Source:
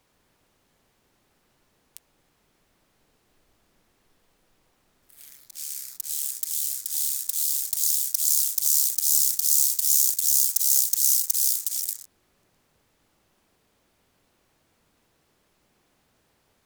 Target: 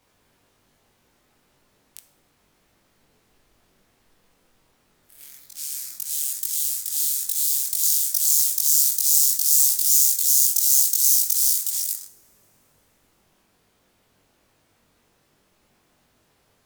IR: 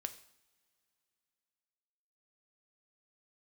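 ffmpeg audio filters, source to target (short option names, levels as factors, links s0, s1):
-filter_complex "[0:a]asplit=2[s0][s1];[1:a]atrim=start_sample=2205,adelay=21[s2];[s1][s2]afir=irnorm=-1:irlink=0,volume=1.33[s3];[s0][s3]amix=inputs=2:normalize=0"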